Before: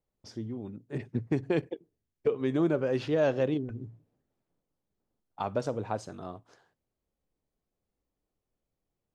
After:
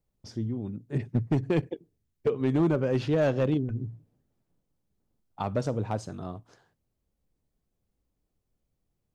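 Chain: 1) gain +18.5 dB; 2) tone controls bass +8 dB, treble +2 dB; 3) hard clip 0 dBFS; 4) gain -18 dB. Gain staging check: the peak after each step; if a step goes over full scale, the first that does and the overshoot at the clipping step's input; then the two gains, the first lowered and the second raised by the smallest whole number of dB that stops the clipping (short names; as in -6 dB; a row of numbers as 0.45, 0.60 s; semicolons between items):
+4.0, +6.5, 0.0, -18.0 dBFS; step 1, 6.5 dB; step 1 +11.5 dB, step 4 -11 dB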